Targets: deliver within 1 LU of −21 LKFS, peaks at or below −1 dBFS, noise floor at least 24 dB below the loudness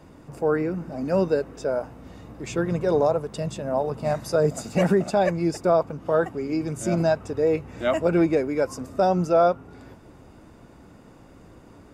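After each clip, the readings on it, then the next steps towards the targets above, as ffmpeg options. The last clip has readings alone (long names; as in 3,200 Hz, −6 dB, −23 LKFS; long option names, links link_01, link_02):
integrated loudness −24.0 LKFS; sample peak −10.0 dBFS; target loudness −21.0 LKFS
→ -af "volume=3dB"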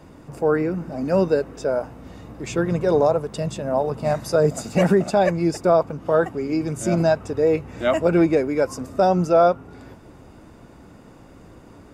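integrated loudness −21.0 LKFS; sample peak −7.0 dBFS; background noise floor −46 dBFS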